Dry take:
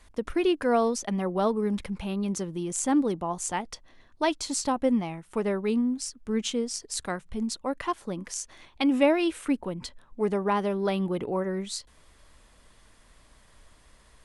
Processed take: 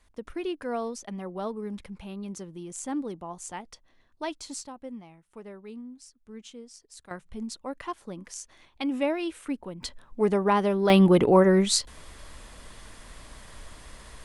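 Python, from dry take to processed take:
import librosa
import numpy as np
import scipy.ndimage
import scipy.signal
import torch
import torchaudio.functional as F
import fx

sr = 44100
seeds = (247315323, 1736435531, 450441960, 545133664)

y = fx.gain(x, sr, db=fx.steps((0.0, -8.0), (4.63, -16.0), (7.11, -5.5), (9.83, 3.0), (10.9, 11.0)))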